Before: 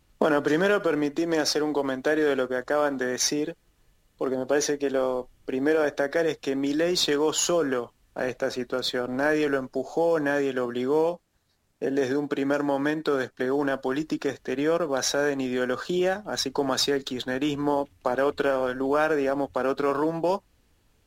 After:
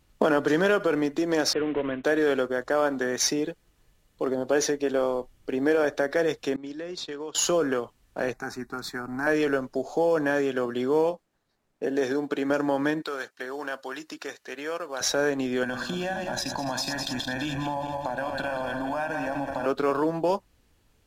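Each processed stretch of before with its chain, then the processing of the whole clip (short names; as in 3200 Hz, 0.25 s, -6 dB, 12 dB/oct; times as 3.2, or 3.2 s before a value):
1.53–2.04 CVSD 16 kbps + bell 820 Hz -10 dB 0.42 oct
6.56–7.35 expander -18 dBFS + LPF 7100 Hz + compressor, threshold -31 dBFS
8.33–9.27 fixed phaser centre 1300 Hz, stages 4 + small resonant body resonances 790/3100 Hz, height 11 dB, ringing for 95 ms
11.11–12.5 bell 63 Hz -14 dB 1.8 oct + mismatched tape noise reduction decoder only
13.02–15.01 HPF 1300 Hz 6 dB/oct + notch 3400 Hz, Q 19 + hard clip -21.5 dBFS
15.63–19.66 regenerating reverse delay 0.102 s, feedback 67%, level -8 dB + comb 1.2 ms, depth 100% + compressor 5:1, threshold -26 dBFS
whole clip: dry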